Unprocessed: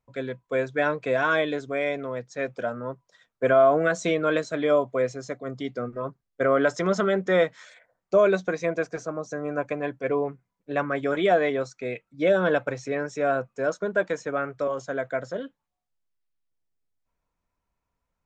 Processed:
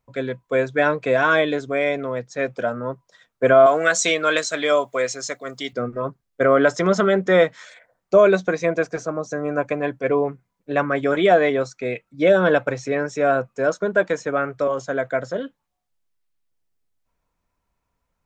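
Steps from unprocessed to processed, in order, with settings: 3.66–5.73 s: tilt EQ +4 dB/octave; trim +5.5 dB

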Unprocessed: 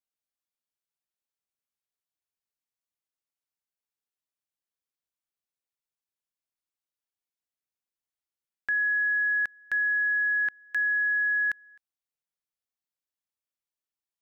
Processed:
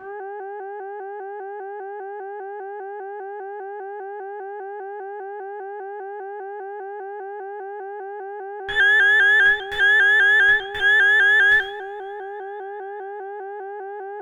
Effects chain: mains buzz 400 Hz, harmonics 4, -45 dBFS -2 dB/octave; Chebyshev shaper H 2 -13 dB, 6 -41 dB, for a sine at -21 dBFS; reverberation, pre-delay 3 ms, DRR -9 dB; vibrato with a chosen wave saw up 5 Hz, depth 100 cents

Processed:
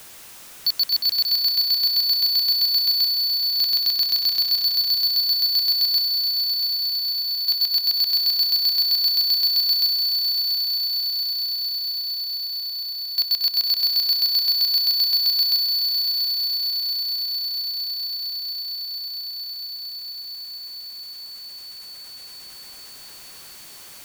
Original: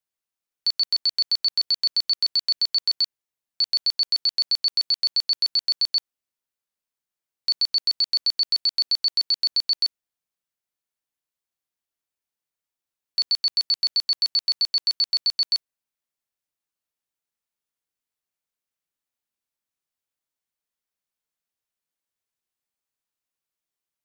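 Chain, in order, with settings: 4.58–5.52 s: fifteen-band graphic EQ 400 Hz -7 dB, 1 kHz -3 dB, 2.5 kHz -5 dB, 6.3 kHz -3 dB; multi-head delay 228 ms, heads all three, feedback 64%, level -17.5 dB; power-law waveshaper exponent 0.35; trim -1 dB

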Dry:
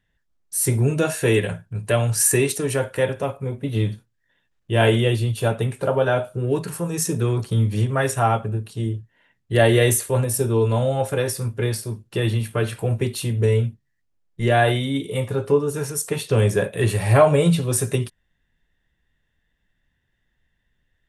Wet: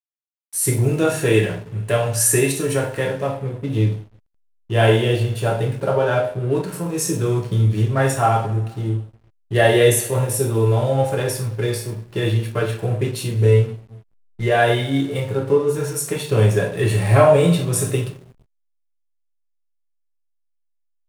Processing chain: two-slope reverb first 0.47 s, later 1.8 s, DRR 0 dB; hysteresis with a dead band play -33.5 dBFS; trim -1 dB

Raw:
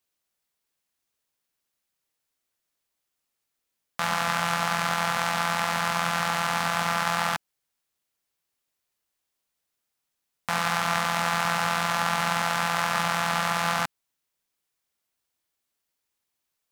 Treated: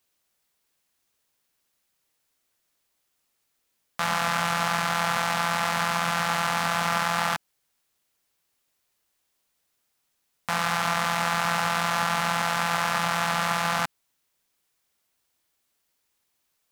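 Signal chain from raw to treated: peak limiter -17 dBFS, peak gain reduction 9 dB; trim +6.5 dB

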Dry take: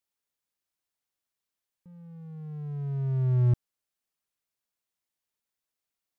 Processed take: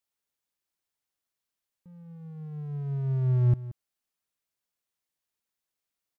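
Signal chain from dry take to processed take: delay 177 ms -16 dB

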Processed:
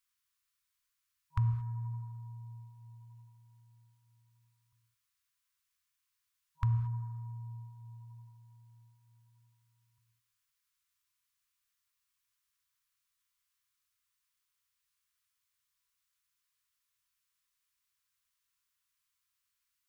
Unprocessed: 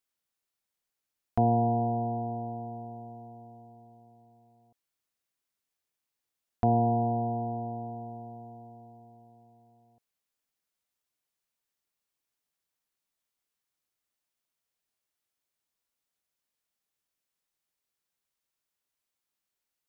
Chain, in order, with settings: peaking EQ 150 Hz -10 dB 0.41 oct; tape echo 78 ms, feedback 77%, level -19 dB, low-pass 1.1 kHz; FFT band-reject 150–960 Hz; gated-style reverb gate 250 ms flat, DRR 10 dB; trim +3 dB

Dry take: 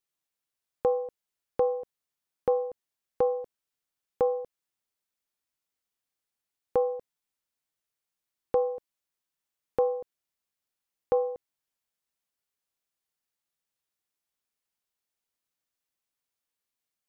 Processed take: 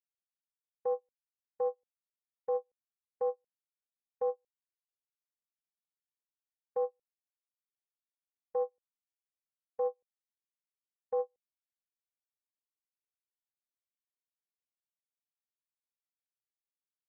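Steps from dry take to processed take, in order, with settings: gate -24 dBFS, range -47 dB; reverse; compression 5:1, threshold -33 dBFS, peak gain reduction 11 dB; reverse; trim +3 dB

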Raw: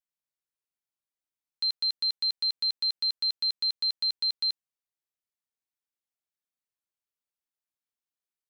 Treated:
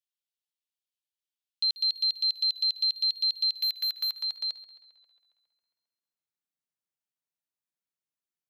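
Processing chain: 3.54–4.15 s: waveshaping leveller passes 2; high-pass sweep 3.1 kHz -> 140 Hz, 3.48–5.36 s; on a send: tape echo 135 ms, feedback 73%, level -14.5 dB, low-pass 5.2 kHz; on the sum: trim -4 dB

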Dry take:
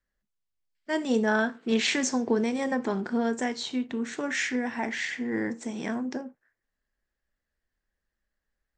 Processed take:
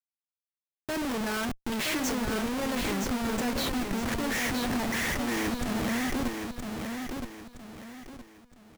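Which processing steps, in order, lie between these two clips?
Schmitt trigger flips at -36 dBFS; on a send: feedback delay 968 ms, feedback 34%, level -5 dB

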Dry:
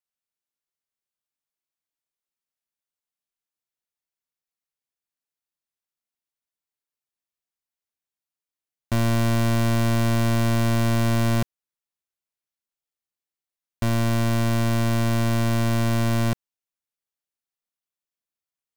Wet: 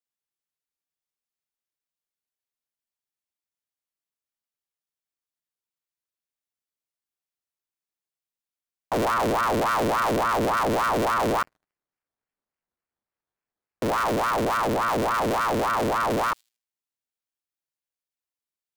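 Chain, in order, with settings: feedback echo behind a high-pass 78 ms, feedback 31%, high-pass 4.1 kHz, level -22.5 dB; 11.41–14.13 s: sample-rate reducer 2.5 kHz, jitter 0%; ring modulator with a swept carrier 800 Hz, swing 60%, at 3.5 Hz

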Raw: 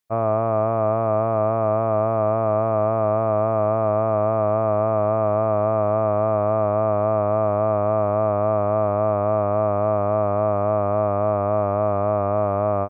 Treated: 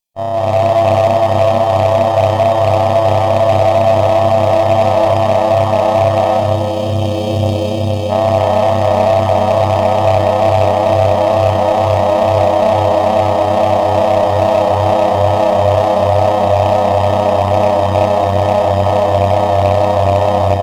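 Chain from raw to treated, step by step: comb filter that takes the minimum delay 1.2 ms; time-frequency box 3.99–5.07 s, 550–2300 Hz -16 dB; reverse bouncing-ball echo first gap 100 ms, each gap 1.15×, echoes 5; granular stretch 1.6×, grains 63 ms; one-sided clip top -18.5 dBFS, bottom -12.5 dBFS; FFT filter 200 Hz 0 dB, 310 Hz +3 dB, 480 Hz +7 dB, 940 Hz +2 dB, 1.6 kHz -12 dB, 2.3 kHz +2 dB, 3.4 kHz +4 dB; level rider

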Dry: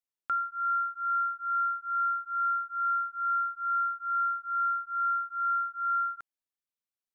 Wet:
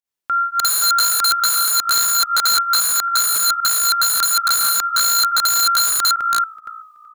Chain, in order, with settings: chunks repeated in reverse 280 ms, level -9 dB; level rider gain up to 13 dB; on a send: frequency-shifting echo 377 ms, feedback 35%, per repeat -57 Hz, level -20.5 dB; on the sum: volume shaper 100 bpm, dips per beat 1, -18 dB, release 121 ms; integer overflow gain 18 dB; trim +6.5 dB

